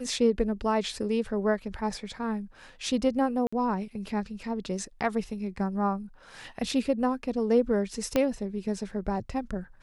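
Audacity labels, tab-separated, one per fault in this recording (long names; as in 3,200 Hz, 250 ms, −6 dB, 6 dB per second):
3.470000	3.520000	drop-out 55 ms
8.160000	8.160000	click −11 dBFS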